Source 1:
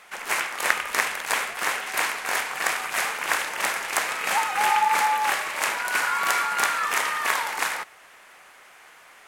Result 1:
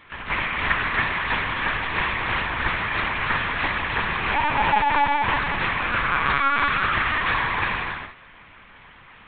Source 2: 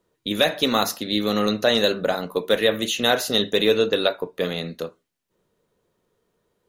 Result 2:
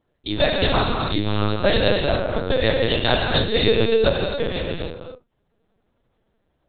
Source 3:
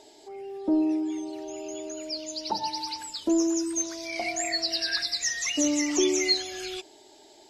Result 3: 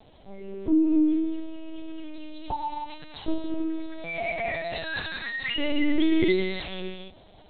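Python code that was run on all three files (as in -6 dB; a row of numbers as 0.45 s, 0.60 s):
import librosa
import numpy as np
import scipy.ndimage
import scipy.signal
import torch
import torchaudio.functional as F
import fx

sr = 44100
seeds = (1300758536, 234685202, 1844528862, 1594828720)

y = fx.hum_notches(x, sr, base_hz=60, count=9)
y = fx.rev_gated(y, sr, seeds[0], gate_ms=320, shape='flat', drr_db=0.0)
y = fx.lpc_vocoder(y, sr, seeds[1], excitation='pitch_kept', order=8)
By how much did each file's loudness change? +2.0 LU, +1.0 LU, 0.0 LU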